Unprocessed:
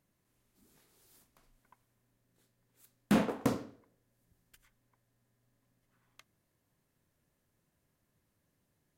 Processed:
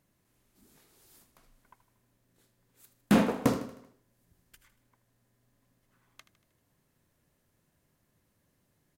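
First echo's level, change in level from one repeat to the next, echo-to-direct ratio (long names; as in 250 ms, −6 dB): −14.0 dB, −5.5 dB, −12.5 dB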